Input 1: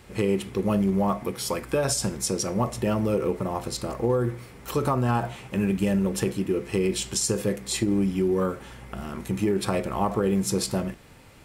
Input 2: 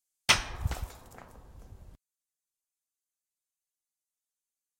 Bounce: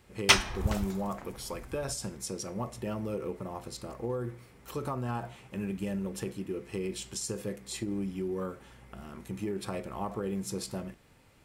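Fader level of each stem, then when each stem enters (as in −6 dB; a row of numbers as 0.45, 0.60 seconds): −10.5, +2.0 decibels; 0.00, 0.00 seconds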